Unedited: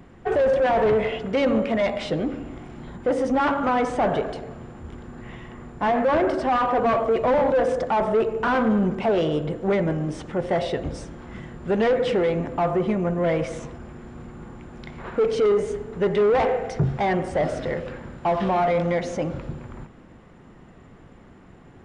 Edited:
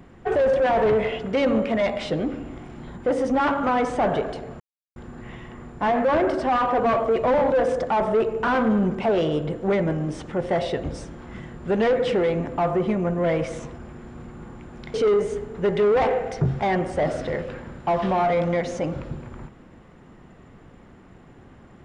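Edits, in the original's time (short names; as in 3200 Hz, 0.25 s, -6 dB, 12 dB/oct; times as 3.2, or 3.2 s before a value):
4.6–4.96 mute
14.94–15.32 cut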